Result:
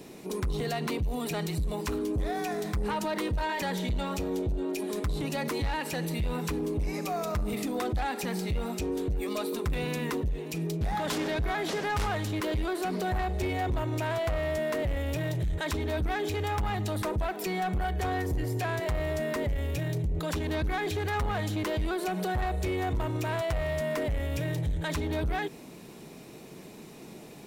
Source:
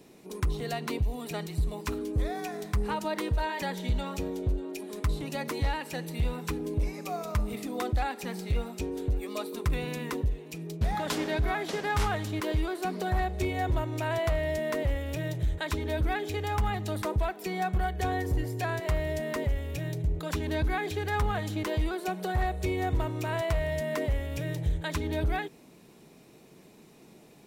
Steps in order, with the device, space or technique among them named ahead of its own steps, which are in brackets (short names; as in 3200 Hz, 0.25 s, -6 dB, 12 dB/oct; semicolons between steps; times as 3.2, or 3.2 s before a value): soft clipper into limiter (soft clip -26.5 dBFS, distortion -13 dB; limiter -33 dBFS, peak gain reduction 6 dB); gain +8 dB